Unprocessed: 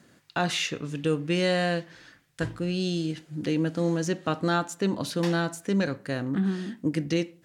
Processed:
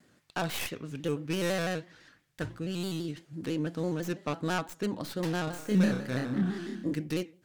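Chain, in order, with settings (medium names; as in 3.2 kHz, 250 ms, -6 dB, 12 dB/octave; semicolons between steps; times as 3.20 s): tracing distortion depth 0.16 ms; 5.44–6.94 s: flutter echo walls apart 5.2 m, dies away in 0.68 s; vibrato with a chosen wave square 6 Hz, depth 100 cents; trim -6 dB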